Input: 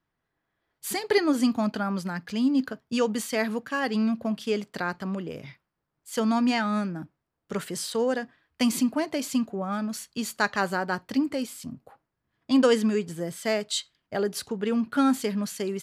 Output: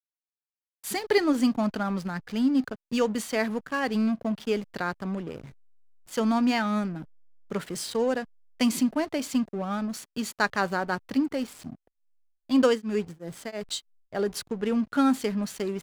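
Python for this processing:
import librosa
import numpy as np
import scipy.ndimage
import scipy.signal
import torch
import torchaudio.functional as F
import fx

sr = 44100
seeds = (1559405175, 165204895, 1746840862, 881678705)

y = fx.backlash(x, sr, play_db=-36.0)
y = fx.tremolo_abs(y, sr, hz=fx.line((11.67, 1.8), (14.25, 4.0)), at=(11.67, 14.25), fade=0.02)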